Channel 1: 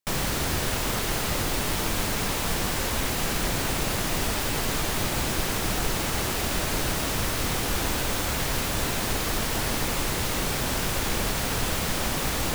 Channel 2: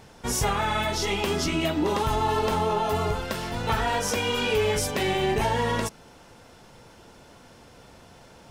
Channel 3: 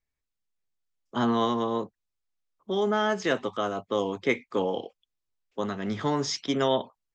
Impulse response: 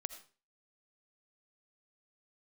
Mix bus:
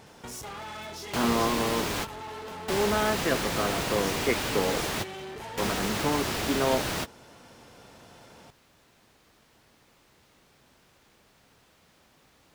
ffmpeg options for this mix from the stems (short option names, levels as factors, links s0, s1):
-filter_complex "[0:a]acrossover=split=320|6500[s0][s1][s2];[s0]acompressor=threshold=0.0251:ratio=4[s3];[s1]acompressor=threshold=0.0224:ratio=4[s4];[s2]acompressor=threshold=0.00562:ratio=4[s5];[s3][s4][s5]amix=inputs=3:normalize=0,volume=1.41[s6];[1:a]asoftclip=type=hard:threshold=0.0376,acompressor=threshold=0.0126:ratio=6,volume=0.891[s7];[2:a]lowpass=2300,volume=0.891,asplit=2[s8][s9];[s9]apad=whole_len=553180[s10];[s6][s10]sidechaingate=range=0.0282:threshold=0.00141:ratio=16:detection=peak[s11];[s11][s7][s8]amix=inputs=3:normalize=0,highpass=f=110:p=1"